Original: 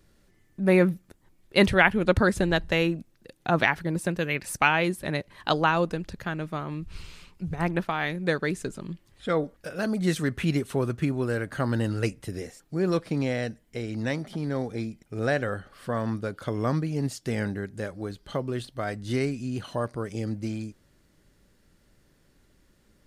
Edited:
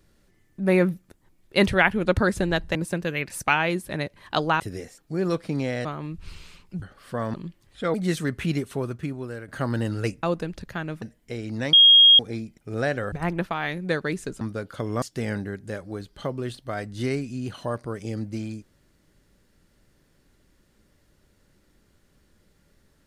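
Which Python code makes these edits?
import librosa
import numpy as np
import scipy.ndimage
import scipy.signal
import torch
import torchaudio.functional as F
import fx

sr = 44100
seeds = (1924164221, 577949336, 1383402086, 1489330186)

y = fx.edit(x, sr, fx.cut(start_s=2.75, length_s=1.14),
    fx.swap(start_s=5.74, length_s=0.79, other_s=12.22, other_length_s=1.25),
    fx.swap(start_s=7.5, length_s=1.29, other_s=15.57, other_length_s=0.52),
    fx.cut(start_s=9.39, length_s=0.54),
    fx.fade_out_to(start_s=10.45, length_s=1.02, floor_db=-10.0),
    fx.bleep(start_s=14.18, length_s=0.46, hz=3260.0, db=-9.5),
    fx.cut(start_s=16.7, length_s=0.42), tone=tone)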